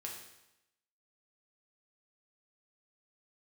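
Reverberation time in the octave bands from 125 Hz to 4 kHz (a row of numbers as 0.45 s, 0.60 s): 0.90 s, 0.90 s, 0.90 s, 0.90 s, 0.90 s, 0.85 s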